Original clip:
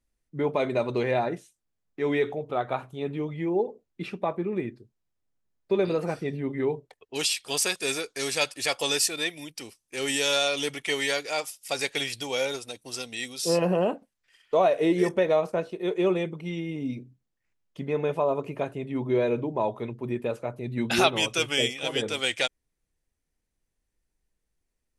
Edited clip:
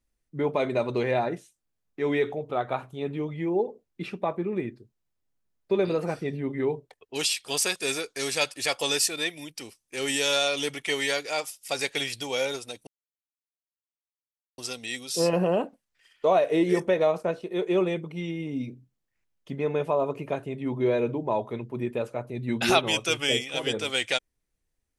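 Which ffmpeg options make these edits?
-filter_complex "[0:a]asplit=2[s0][s1];[s0]atrim=end=12.87,asetpts=PTS-STARTPTS,afade=t=out:st=12.866:d=0.004:c=hsin,apad=pad_dur=1.71[s2];[s1]atrim=start=12.87,asetpts=PTS-STARTPTS,afade=t=in:d=0.004:c=hsin[s3];[s2][s3]concat=n=2:v=0:a=1"

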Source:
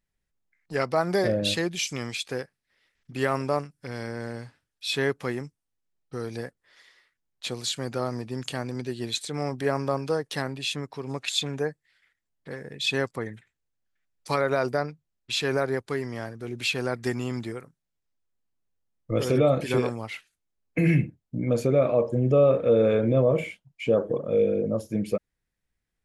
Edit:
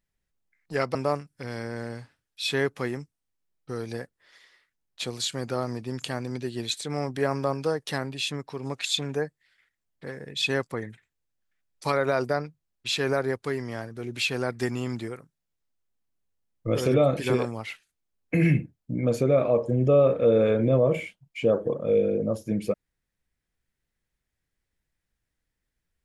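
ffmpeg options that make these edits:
-filter_complex "[0:a]asplit=2[s0][s1];[s0]atrim=end=0.952[s2];[s1]atrim=start=3.388[s3];[s2][s3]acrossfade=d=0.004:c1=hsin:c2=hsin"

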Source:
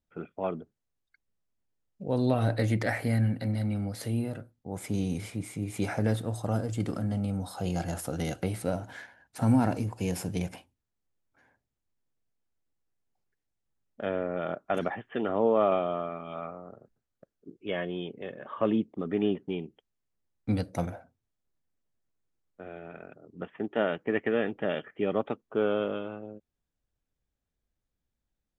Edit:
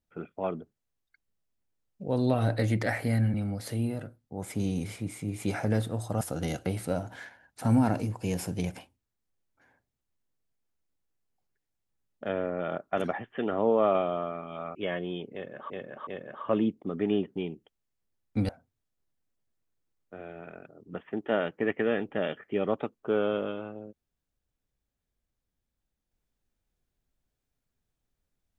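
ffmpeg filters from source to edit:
-filter_complex "[0:a]asplit=7[s0][s1][s2][s3][s4][s5][s6];[s0]atrim=end=3.342[s7];[s1]atrim=start=3.678:end=6.552[s8];[s2]atrim=start=7.978:end=16.522[s9];[s3]atrim=start=17.608:end=18.562[s10];[s4]atrim=start=18.188:end=18.562[s11];[s5]atrim=start=18.188:end=20.612[s12];[s6]atrim=start=20.958[s13];[s7][s8]acrossfade=d=0.004:c1=hsin:c2=hsin[s14];[s14][s9]acrossfade=d=0.004:c1=hsin:c2=hsin[s15];[s15][s10]acrossfade=d=0.004:c1=hsin:c2=hsin[s16];[s16][s11]acrossfade=d=0.004:c1=hsin:c2=hsin[s17];[s17][s12]acrossfade=d=0.004:c1=hsin:c2=hsin[s18];[s18][s13]acrossfade=d=0.004:c1=hsin:c2=hsin"

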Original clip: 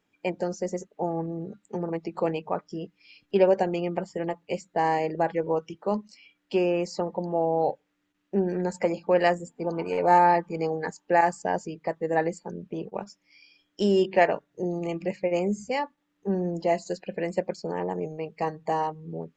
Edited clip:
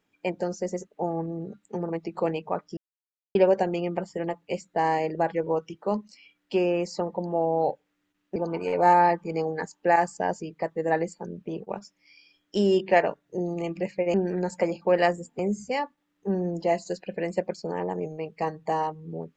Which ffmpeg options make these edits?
-filter_complex "[0:a]asplit=6[s0][s1][s2][s3][s4][s5];[s0]atrim=end=2.77,asetpts=PTS-STARTPTS,afade=t=out:st=2.766:d=0.004:c=hsin[s6];[s1]atrim=start=2.77:end=3.35,asetpts=PTS-STARTPTS,volume=0[s7];[s2]atrim=start=3.35:end=8.362,asetpts=PTS-STARTPTS,afade=t=in:d=0.004:c=hsin[s8];[s3]atrim=start=9.608:end=15.392[s9];[s4]atrim=start=8.358:end=9.612[s10];[s5]atrim=start=15.388[s11];[s6][s7][s8]concat=n=3:v=0:a=1[s12];[s12][s9]acrossfade=d=0.004:c1=hsin:c2=hsin[s13];[s13][s10]acrossfade=d=0.004:c1=hsin:c2=hsin[s14];[s14][s11]acrossfade=d=0.004:c1=hsin:c2=hsin"

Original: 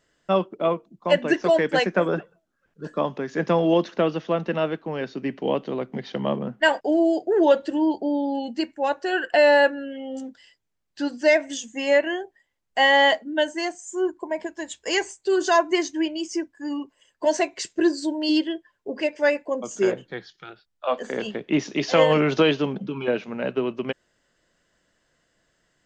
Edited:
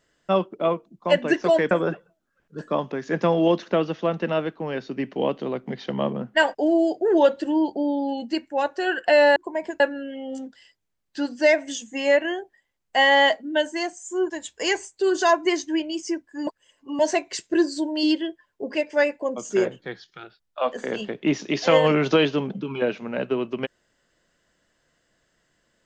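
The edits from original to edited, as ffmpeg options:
-filter_complex "[0:a]asplit=7[s0][s1][s2][s3][s4][s5][s6];[s0]atrim=end=1.712[s7];[s1]atrim=start=1.968:end=9.622[s8];[s2]atrim=start=14.118:end=14.562[s9];[s3]atrim=start=9.618:end=14.122[s10];[s4]atrim=start=14.558:end=16.732[s11];[s5]atrim=start=16.728:end=17.252,asetpts=PTS-STARTPTS,areverse[s12];[s6]atrim=start=17.248[s13];[s7][s8]acrossfade=d=0.004:c1=hsin:c2=hsin[s14];[s14][s9]acrossfade=d=0.004:c1=hsin:c2=hsin[s15];[s15][s10]acrossfade=d=0.004:c1=hsin:c2=hsin[s16];[s16][s11]acrossfade=d=0.004:c1=hsin:c2=hsin[s17];[s17][s12]acrossfade=d=0.004:c1=hsin:c2=hsin[s18];[s18][s13]acrossfade=d=0.004:c1=hsin:c2=hsin"

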